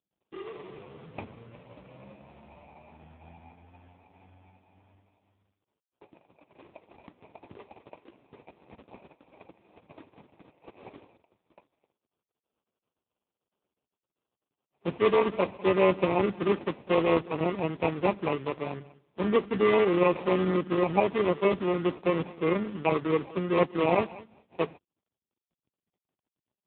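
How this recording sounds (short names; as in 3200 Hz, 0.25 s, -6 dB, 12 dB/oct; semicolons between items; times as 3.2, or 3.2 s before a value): aliases and images of a low sample rate 1600 Hz, jitter 0%; AMR-NB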